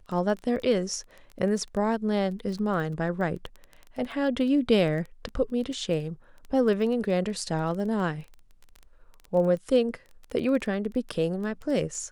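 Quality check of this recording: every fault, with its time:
crackle 14 per s -33 dBFS

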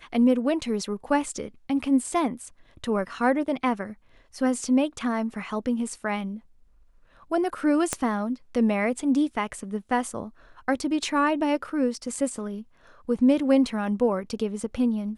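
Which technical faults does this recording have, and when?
7.93 s: pop -10 dBFS

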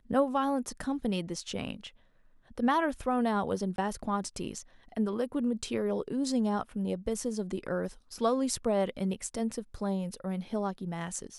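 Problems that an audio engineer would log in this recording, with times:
3.76–3.78 s: dropout 22 ms

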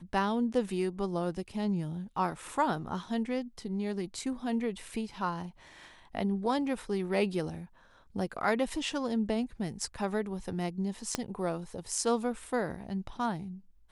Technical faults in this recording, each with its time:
11.15 s: pop -14 dBFS

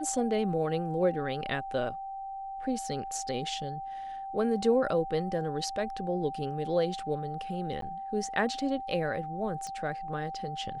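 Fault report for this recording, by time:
whine 780 Hz -36 dBFS
7.81–7.82 s: dropout 13 ms
9.67 s: pop -27 dBFS

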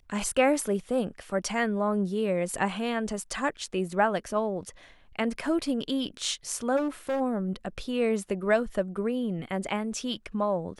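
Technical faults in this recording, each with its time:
6.76–7.21 s: clipped -25 dBFS

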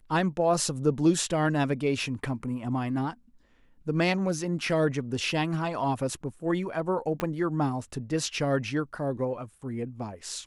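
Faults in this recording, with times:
7.20 s: pop -15 dBFS

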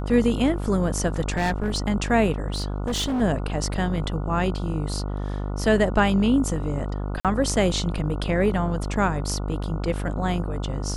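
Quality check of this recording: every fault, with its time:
buzz 50 Hz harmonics 29 -28 dBFS
1.30–1.79 s: clipped -19 dBFS
2.50–3.22 s: clipped -22 dBFS
7.20–7.25 s: dropout 47 ms

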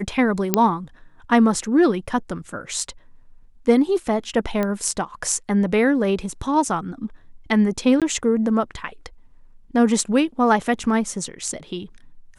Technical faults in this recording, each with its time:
0.54 s: pop -1 dBFS
4.63 s: pop -11 dBFS
8.00–8.02 s: dropout 17 ms

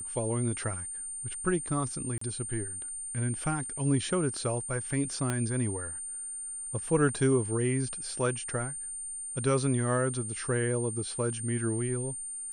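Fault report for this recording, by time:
whine 9 kHz -36 dBFS
2.18–2.21 s: dropout 34 ms
5.30 s: pop -16 dBFS

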